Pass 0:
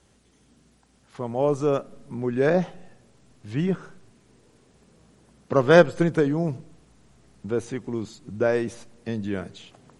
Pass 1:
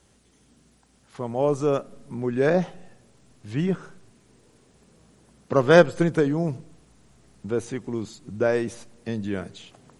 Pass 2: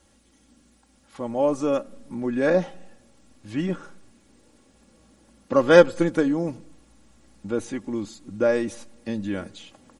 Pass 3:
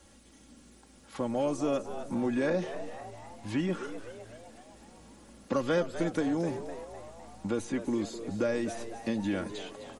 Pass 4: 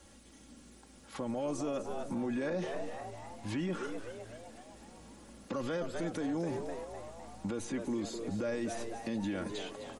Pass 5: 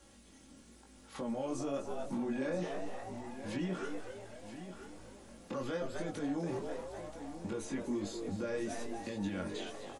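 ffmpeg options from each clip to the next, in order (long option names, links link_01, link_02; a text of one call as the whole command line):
ffmpeg -i in.wav -af "highshelf=frequency=7800:gain=5" out.wav
ffmpeg -i in.wav -af "aecho=1:1:3.6:0.64,volume=-1dB" out.wav
ffmpeg -i in.wav -filter_complex "[0:a]acrossover=split=230|2300[link_01][link_02][link_03];[link_01]acompressor=threshold=-39dB:ratio=4[link_04];[link_02]acompressor=threshold=-33dB:ratio=4[link_05];[link_03]acompressor=threshold=-48dB:ratio=4[link_06];[link_04][link_05][link_06]amix=inputs=3:normalize=0,asplit=2[link_07][link_08];[link_08]asoftclip=type=hard:threshold=-27.5dB,volume=-9dB[link_09];[link_07][link_09]amix=inputs=2:normalize=0,asplit=7[link_10][link_11][link_12][link_13][link_14][link_15][link_16];[link_11]adelay=254,afreqshift=110,volume=-12dB[link_17];[link_12]adelay=508,afreqshift=220,volume=-17dB[link_18];[link_13]adelay=762,afreqshift=330,volume=-22.1dB[link_19];[link_14]adelay=1016,afreqshift=440,volume=-27.1dB[link_20];[link_15]adelay=1270,afreqshift=550,volume=-32.1dB[link_21];[link_16]adelay=1524,afreqshift=660,volume=-37.2dB[link_22];[link_10][link_17][link_18][link_19][link_20][link_21][link_22]amix=inputs=7:normalize=0" out.wav
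ffmpeg -i in.wav -af "alimiter=level_in=4dB:limit=-24dB:level=0:latency=1:release=39,volume=-4dB" out.wav
ffmpeg -i in.wav -af "flanger=delay=19.5:depth=3.7:speed=0.99,aecho=1:1:981:0.282,volume=1dB" out.wav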